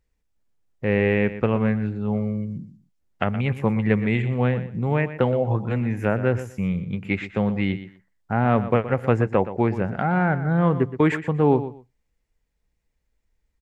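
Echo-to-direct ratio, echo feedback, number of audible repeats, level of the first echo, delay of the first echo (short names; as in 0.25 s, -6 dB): -13.0 dB, 19%, 2, -13.0 dB, 0.121 s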